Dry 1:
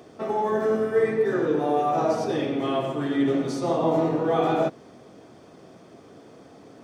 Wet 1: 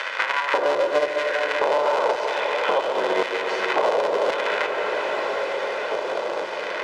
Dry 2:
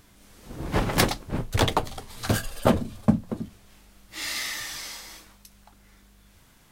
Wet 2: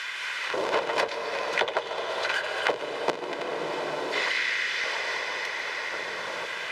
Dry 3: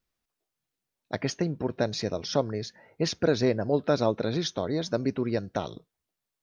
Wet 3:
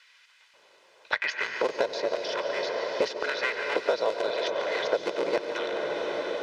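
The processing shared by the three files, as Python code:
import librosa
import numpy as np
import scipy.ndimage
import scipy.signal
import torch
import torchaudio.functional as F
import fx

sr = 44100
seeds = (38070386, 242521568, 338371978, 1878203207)

y = fx.cycle_switch(x, sr, every=3, mode='inverted')
y = scipy.signal.sosfilt(scipy.signal.butter(2, 3900.0, 'lowpass', fs=sr, output='sos'), y)
y = y + 0.47 * np.pad(y, (int(2.0 * sr / 1000.0), 0))[:len(y)]
y = fx.filter_lfo_highpass(y, sr, shape='square', hz=0.93, low_hz=540.0, high_hz=1900.0, q=1.4)
y = fx.echo_multitap(y, sr, ms=(92, 142), db=(-18.5, -15.5))
y = fx.rev_plate(y, sr, seeds[0], rt60_s=3.9, hf_ratio=0.85, predelay_ms=115, drr_db=7.5)
y = fx.band_squash(y, sr, depth_pct=100)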